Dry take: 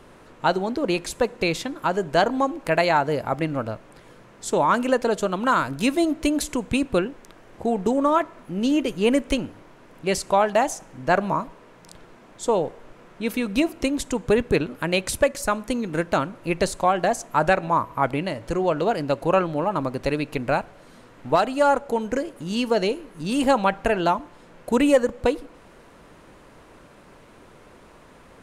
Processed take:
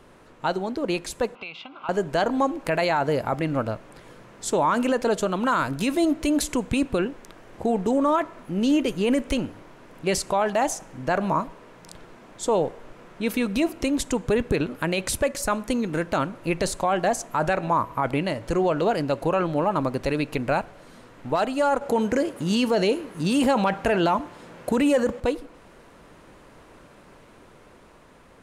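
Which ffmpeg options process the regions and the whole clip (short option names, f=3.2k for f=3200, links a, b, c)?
-filter_complex "[0:a]asettb=1/sr,asplit=3[a][b][c];[a]atrim=end=1.354[d];[b]atrim=start=1.35:end=1.89,asetpts=PTS-STARTPTS,afade=t=in:d=0.004:c=qsin,afade=t=out:st=0.536:d=0.004:c=qsin,highpass=250,equalizer=f=320:t=q:w=4:g=-10,equalizer=f=480:t=q:w=4:g=-9,equalizer=f=810:t=q:w=4:g=5,equalizer=f=1.2k:t=q:w=4:g=6,equalizer=f=1.8k:t=q:w=4:g=9,equalizer=f=2.8k:t=q:w=4:g=10,lowpass=f=3.8k:w=0.5412,lowpass=f=3.8k:w=1.3066,acompressor=threshold=-38dB:ratio=2.5:attack=3.2:release=140:knee=1:detection=peak,asuperstop=centerf=1800:order=4:qfactor=3.1[e];[c]atrim=start=1.886[f];[d][e]acrossfade=d=0.004:c1=hsin:c2=qsin[g];[g][f]acrossfade=d=0.004:c1=qsin:c2=hsin,asettb=1/sr,asplit=3[h][i][j];[h]atrim=end=21.814[k];[i]atrim=start=21.81:end=25.2,asetpts=PTS-STARTPTS,afade=t=in:d=0.004:c=qsin,afade=t=out:st=3.386:d=0.004:c=qsin,highpass=49,acontrast=52[l];[j]atrim=start=25.196[m];[k][l]acrossfade=d=0.004:c1=hsin:c2=qsin[n];[n][m]acrossfade=d=0.004:c1=qsin:c2=hsin,dynaudnorm=f=400:g=9:m=6dB,alimiter=limit=-10.5dB:level=0:latency=1:release=20,volume=-3dB"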